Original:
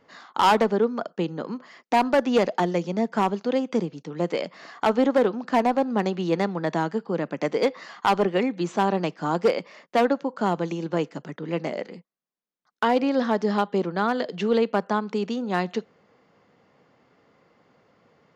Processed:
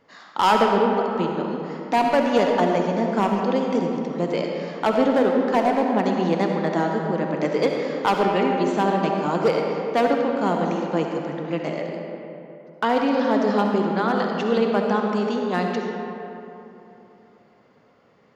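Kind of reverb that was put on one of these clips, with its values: digital reverb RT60 3.1 s, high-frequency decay 0.5×, pre-delay 25 ms, DRR 1 dB

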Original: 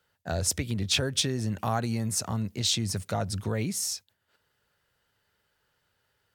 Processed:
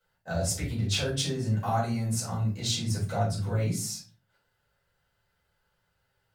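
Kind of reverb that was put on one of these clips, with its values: shoebox room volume 220 m³, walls furnished, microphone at 5.3 m; gain -11.5 dB

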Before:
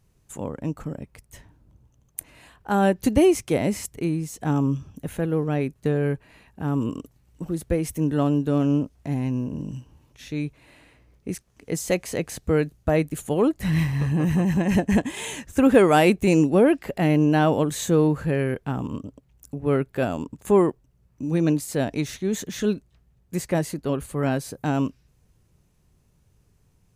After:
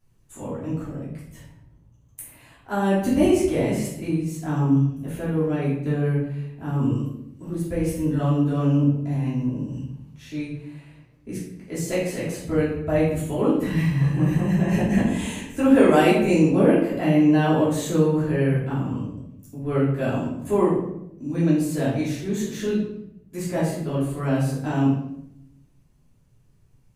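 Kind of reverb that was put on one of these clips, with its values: shoebox room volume 210 m³, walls mixed, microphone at 3 m; gain -10.5 dB

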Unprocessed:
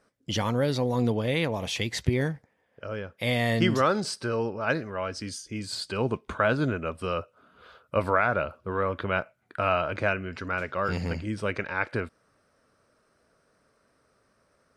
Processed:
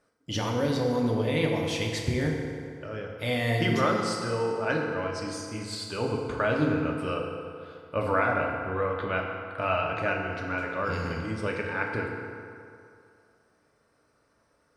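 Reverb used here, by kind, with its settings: FDN reverb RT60 2.5 s, low-frequency decay 0.85×, high-frequency decay 0.6×, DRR -0.5 dB; gain -4 dB

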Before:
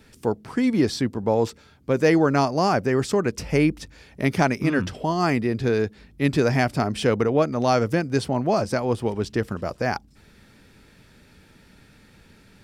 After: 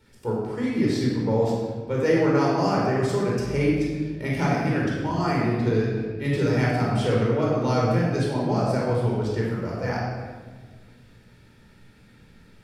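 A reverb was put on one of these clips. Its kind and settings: shoebox room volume 1600 m³, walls mixed, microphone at 4.5 m; gain -10.5 dB

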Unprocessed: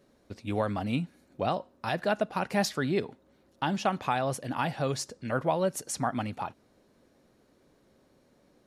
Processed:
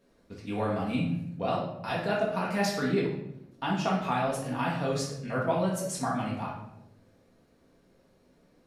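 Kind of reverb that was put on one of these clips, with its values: shoebox room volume 210 m³, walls mixed, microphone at 1.7 m; gain -5.5 dB

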